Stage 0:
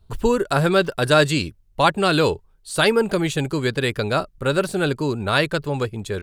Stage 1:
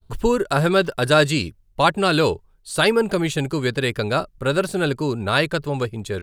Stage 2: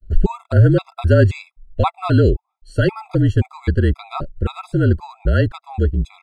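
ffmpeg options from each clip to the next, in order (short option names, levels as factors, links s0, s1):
-af "agate=range=0.0224:threshold=0.00251:ratio=3:detection=peak"
-af "afreqshift=-41,aemphasis=mode=reproduction:type=riaa,afftfilt=real='re*gt(sin(2*PI*1.9*pts/sr)*(1-2*mod(floor(b*sr/1024/670),2)),0)':imag='im*gt(sin(2*PI*1.9*pts/sr)*(1-2*mod(floor(b*sr/1024/670),2)),0)':win_size=1024:overlap=0.75,volume=0.891"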